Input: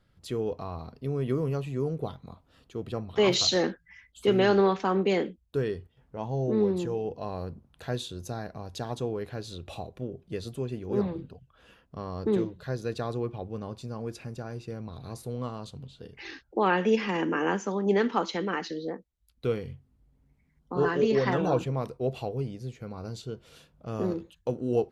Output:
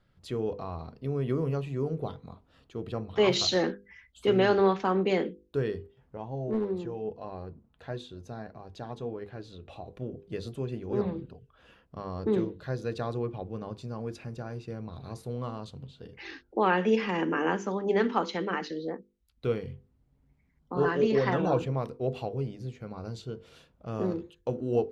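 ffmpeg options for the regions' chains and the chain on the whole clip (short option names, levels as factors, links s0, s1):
-filter_complex "[0:a]asettb=1/sr,asplit=3[s0][s1][s2];[s0]atrim=end=6.174[s3];[s1]atrim=start=6.17:end=9.87,asetpts=PTS-STARTPTS,afade=t=in:d=0.004:c=qsin,afade=t=out:st=3.696:d=0.004:c=qsin,aemphasis=mode=reproduction:type=cd,flanger=delay=2.4:depth=2.3:regen=67:speed=1.6:shape=sinusoidal,asoftclip=type=hard:threshold=0.0708[s4];[s2]atrim=start=9.866[s5];[s3][s4]acrossfade=d=0.004:c1=hsin:c2=qsin[s6];[s6][s5]acrossfade=d=0.004:c1=qsin:c2=hsin,highshelf=f=7100:g=-11,bandreject=f=50:t=h:w=6,bandreject=f=100:t=h:w=6,bandreject=f=150:t=h:w=6,bandreject=f=200:t=h:w=6,bandreject=f=250:t=h:w=6,bandreject=f=300:t=h:w=6,bandreject=f=350:t=h:w=6,bandreject=f=400:t=h:w=6,bandreject=f=450:t=h:w=6,bandreject=f=500:t=h:w=6"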